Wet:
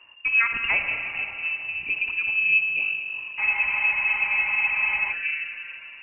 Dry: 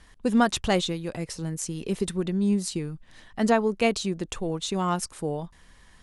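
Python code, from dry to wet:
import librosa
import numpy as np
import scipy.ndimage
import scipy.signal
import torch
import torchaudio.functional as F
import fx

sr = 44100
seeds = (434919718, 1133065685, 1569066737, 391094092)

y = fx.peak_eq(x, sr, hz=120.0, db=10.0, octaves=0.85)
y = fx.rev_schroeder(y, sr, rt60_s=3.1, comb_ms=31, drr_db=3.5)
y = fx.freq_invert(y, sr, carrier_hz=2800)
y = fx.spec_freeze(y, sr, seeds[0], at_s=3.42, hold_s=1.7)
y = y * librosa.db_to_amplitude(-2.0)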